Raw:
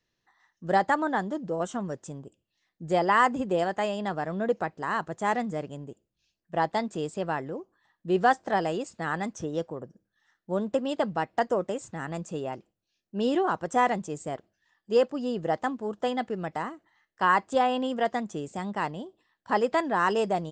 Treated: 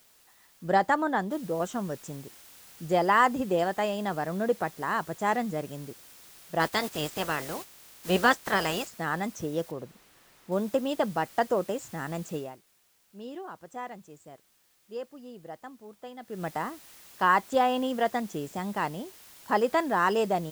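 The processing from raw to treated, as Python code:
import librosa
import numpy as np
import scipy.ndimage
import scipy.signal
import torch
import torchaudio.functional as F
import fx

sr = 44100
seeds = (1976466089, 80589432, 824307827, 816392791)

y = fx.noise_floor_step(x, sr, seeds[0], at_s=1.31, before_db=-61, after_db=-52, tilt_db=0.0)
y = fx.spec_clip(y, sr, under_db=18, at=(6.59, 8.86), fade=0.02)
y = fx.high_shelf(y, sr, hz=3300.0, db=-11.0, at=(9.71, 10.52))
y = fx.edit(y, sr, fx.fade_down_up(start_s=12.36, length_s=4.08, db=-15.0, fade_s=0.28, curve='qua'), tone=tone)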